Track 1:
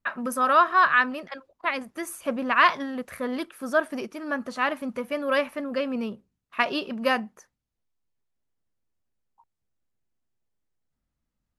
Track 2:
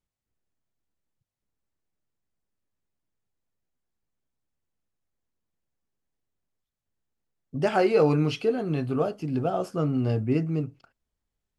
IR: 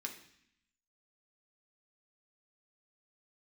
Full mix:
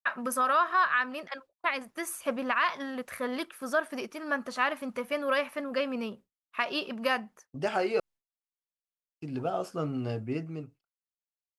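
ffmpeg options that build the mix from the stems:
-filter_complex "[0:a]volume=0.5dB[link_01];[1:a]dynaudnorm=framelen=120:gausssize=21:maxgain=15dB,volume=-12dB,asplit=3[link_02][link_03][link_04];[link_02]atrim=end=8,asetpts=PTS-STARTPTS,afade=type=out:start_time=7.996:duration=0.004:curve=hsin[link_05];[link_03]atrim=start=8:end=9.21,asetpts=PTS-STARTPTS,volume=0[link_06];[link_04]atrim=start=9.21,asetpts=PTS-STARTPTS,afade=type=in:duration=0.004:curve=hsin[link_07];[link_05][link_06][link_07]concat=n=3:v=0:a=1[link_08];[link_01][link_08]amix=inputs=2:normalize=0,agate=range=-33dB:threshold=-42dB:ratio=3:detection=peak,lowshelf=frequency=400:gain=-8,alimiter=limit=-17dB:level=0:latency=1:release=220"

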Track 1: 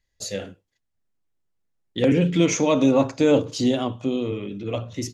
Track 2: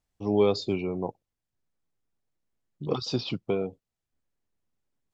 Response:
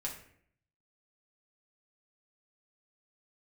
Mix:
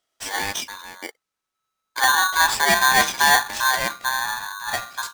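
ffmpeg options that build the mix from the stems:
-filter_complex "[0:a]highpass=frequency=110:width=0.5412,highpass=frequency=110:width=1.3066,equalizer=frequency=1200:width=0.43:gain=4.5,volume=-1dB[link_01];[1:a]equalizer=frequency=125:width_type=o:width=1:gain=-11,equalizer=frequency=250:width_type=o:width=1:gain=-10,equalizer=frequency=500:width_type=o:width=1:gain=-3,equalizer=frequency=1000:width_type=o:width=1:gain=10,equalizer=frequency=4000:width_type=o:width=1:gain=10,equalizer=frequency=8000:width_type=o:width=1:gain=9,volume=-3.5dB[link_02];[link_01][link_02]amix=inputs=2:normalize=0,aeval=exprs='val(0)*sgn(sin(2*PI*1300*n/s))':channel_layout=same"

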